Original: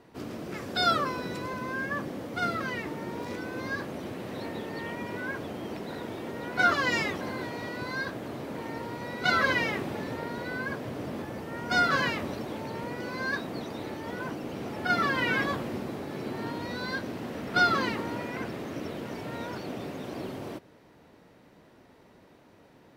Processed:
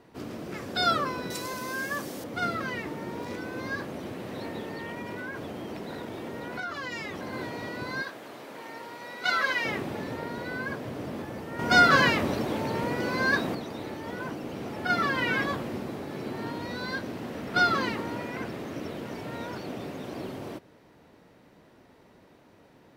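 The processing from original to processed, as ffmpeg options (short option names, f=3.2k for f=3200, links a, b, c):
-filter_complex "[0:a]asettb=1/sr,asplit=3[a][b][c];[a]atrim=end=1.304[d];[b]atrim=start=1.3:end=2.24,asetpts=PTS-STARTPTS,afade=t=in:d=0.004:c=qsin,afade=t=out:st=0.936:d=0.004:c=qsin,bass=f=250:g=-5,treble=f=4k:g=15[e];[c]atrim=start=2.236[f];[d][e]acrossfade=d=0.004:c1=hsin:c2=qsin[g];[g][f]acrossfade=d=0.004:c1=qsin:c2=hsin,asettb=1/sr,asplit=3[h][i][j];[h]atrim=end=4.734[k];[i]atrim=start=4.73:end=7.33,asetpts=PTS-STARTPTS,afade=t=in:d=0.004:c=qsin,afade=t=out:st=2.596:d=0.004:c=qsin,acompressor=threshold=-32dB:ratio=6:attack=3.2:release=140:knee=1:detection=peak[l];[j]atrim=start=7.326[m];[k][l]acrossfade=d=0.004:c1=hsin:c2=qsin[n];[n][m]acrossfade=d=0.004:c1=qsin:c2=hsin,asettb=1/sr,asplit=3[o][p][q];[o]atrim=end=8.024[r];[p]atrim=start=8.02:end=9.65,asetpts=PTS-STARTPTS,afade=t=in:d=0.004:c=qsin,afade=t=out:st=1.626:d=0.004:c=qsin,highpass=f=780:p=1[s];[q]atrim=start=9.646[t];[r][s]acrossfade=d=0.004:c1=hsin:c2=qsin[u];[u][t]acrossfade=d=0.004:c1=qsin:c2=hsin,asettb=1/sr,asplit=3[v][w][x];[v]atrim=end=11.594[y];[w]atrim=start=11.59:end=13.55,asetpts=PTS-STARTPTS,afade=t=in:d=0.004:c=qsin,afade=t=out:st=1.956:d=0.004:c=qsin,acontrast=60[z];[x]atrim=start=13.546[aa];[y][z]acrossfade=d=0.004:c1=hsin:c2=qsin[ab];[ab][aa]acrossfade=d=0.004:c1=qsin:c2=hsin"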